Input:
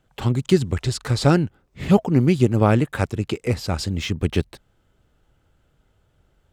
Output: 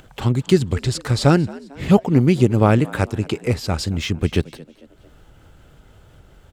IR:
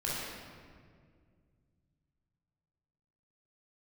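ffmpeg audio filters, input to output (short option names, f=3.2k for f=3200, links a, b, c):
-filter_complex "[0:a]acompressor=mode=upward:threshold=-37dB:ratio=2.5,asplit=4[a][b][c][d];[b]adelay=224,afreqshift=69,volume=-21dB[e];[c]adelay=448,afreqshift=138,volume=-28.1dB[f];[d]adelay=672,afreqshift=207,volume=-35.3dB[g];[a][e][f][g]amix=inputs=4:normalize=0,volume=2dB"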